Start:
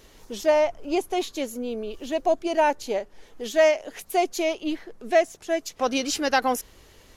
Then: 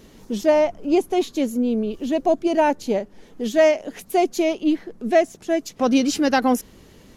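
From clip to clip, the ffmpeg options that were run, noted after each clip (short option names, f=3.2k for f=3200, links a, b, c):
-af "equalizer=f=200:w=0.82:g=14"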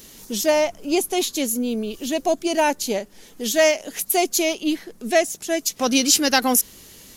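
-af "crystalizer=i=7:c=0,volume=-3.5dB"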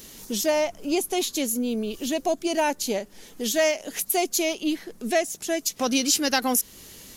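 -af "acompressor=threshold=-27dB:ratio=1.5"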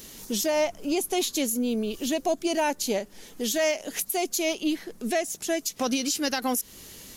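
-af "alimiter=limit=-16dB:level=0:latency=1:release=125"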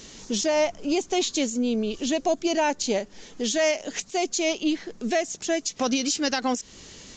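-af "aresample=16000,aresample=44100,volume=2dB"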